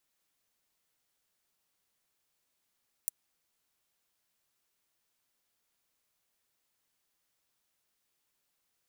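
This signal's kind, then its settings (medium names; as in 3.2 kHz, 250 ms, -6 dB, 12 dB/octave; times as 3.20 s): closed hi-hat, high-pass 8.5 kHz, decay 0.02 s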